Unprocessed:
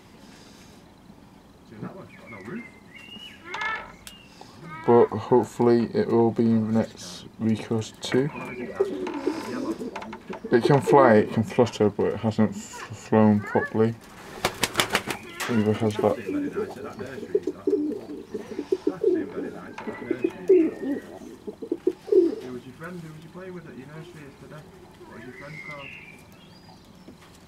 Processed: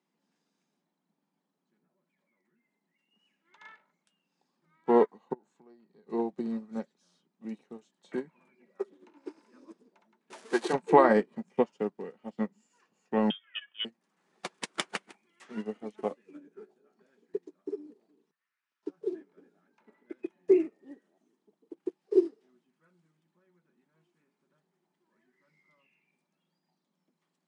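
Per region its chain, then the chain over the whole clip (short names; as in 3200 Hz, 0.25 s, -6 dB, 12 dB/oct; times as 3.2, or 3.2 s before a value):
1.77–3.11 compressor 2.5:1, threshold -45 dBFS + notch 1200 Hz, Q 10
5.33–6.07 LPF 7600 Hz + compressor 4:1, threshold -29 dBFS
10.3–10.73 zero-crossing step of -22 dBFS + HPF 350 Hz + high shelf 3700 Hz +5 dB
13.3–13.85 tilt shelf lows -4 dB, about 1200 Hz + doubler 16 ms -11 dB + inverted band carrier 3400 Hz
16.37–16.97 bell 380 Hz +6.5 dB 1.2 oct + resonator 53 Hz, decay 0.39 s
18.31–18.83 steep high-pass 1200 Hz 48 dB/oct + careless resampling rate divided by 4×, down none, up zero stuff + tape spacing loss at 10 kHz 31 dB
whole clip: Chebyshev band-pass 160–10000 Hz, order 5; upward expander 2.5:1, over -33 dBFS; gain -1 dB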